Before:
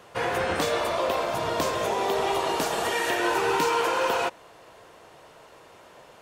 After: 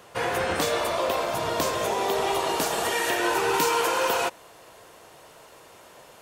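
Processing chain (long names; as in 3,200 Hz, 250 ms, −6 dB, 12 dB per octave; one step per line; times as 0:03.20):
high-shelf EQ 6,700 Hz +7 dB, from 0:03.54 +12 dB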